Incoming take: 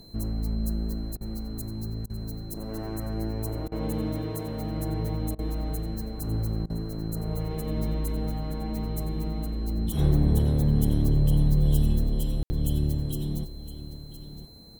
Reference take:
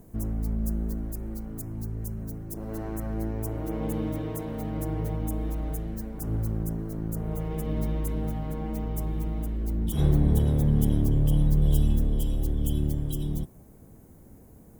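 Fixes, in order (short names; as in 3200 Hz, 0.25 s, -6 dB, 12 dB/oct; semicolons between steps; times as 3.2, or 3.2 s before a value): notch 4100 Hz, Q 30; room tone fill 12.43–12.5; interpolate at 1.17/2.06/3.68/5.35/6.66, 37 ms; inverse comb 1.014 s -13.5 dB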